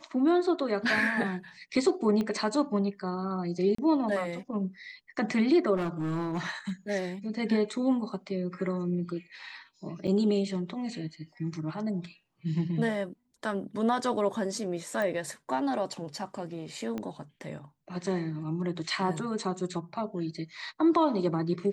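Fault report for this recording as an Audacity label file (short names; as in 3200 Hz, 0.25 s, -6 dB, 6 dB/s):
2.210000	2.210000	pop -20 dBFS
3.750000	3.780000	gap 34 ms
5.760000	6.710000	clipped -27 dBFS
10.070000	10.080000	gap 7.5 ms
15.020000	15.020000	pop -20 dBFS
16.980000	16.980000	pop -22 dBFS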